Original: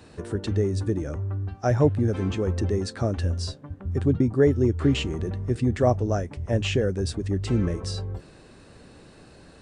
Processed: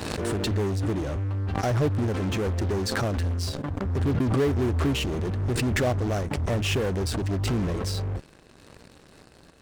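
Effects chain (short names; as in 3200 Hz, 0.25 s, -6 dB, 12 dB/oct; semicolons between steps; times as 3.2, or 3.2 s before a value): in parallel at -7 dB: fuzz box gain 36 dB, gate -44 dBFS; on the sum: backwards sustainer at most 23 dB/s; gain -9 dB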